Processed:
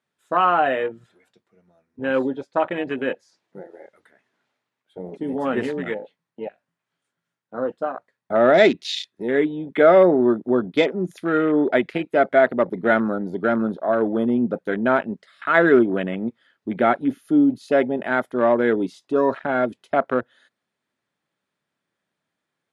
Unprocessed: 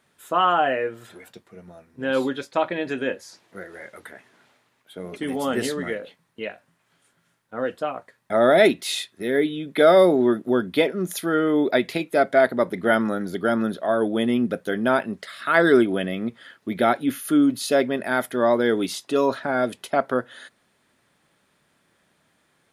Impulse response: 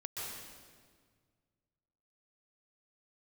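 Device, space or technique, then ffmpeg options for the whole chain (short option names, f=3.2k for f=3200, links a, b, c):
over-cleaned archive recording: -af "highpass=100,lowpass=7.8k,afwtdn=0.0282,volume=1.5dB"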